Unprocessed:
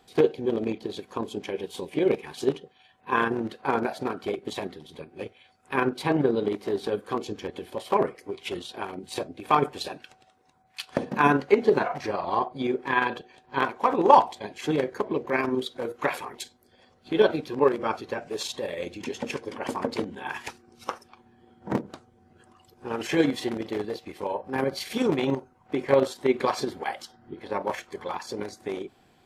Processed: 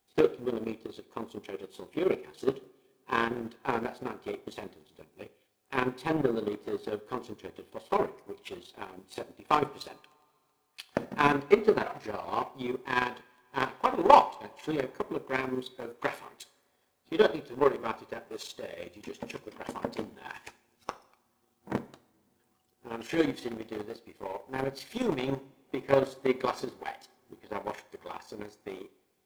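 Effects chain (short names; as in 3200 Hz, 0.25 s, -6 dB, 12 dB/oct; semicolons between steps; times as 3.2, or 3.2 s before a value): requantised 10-bit, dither triangular; power-law curve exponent 1.4; two-slope reverb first 0.57 s, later 2.7 s, from -21 dB, DRR 14 dB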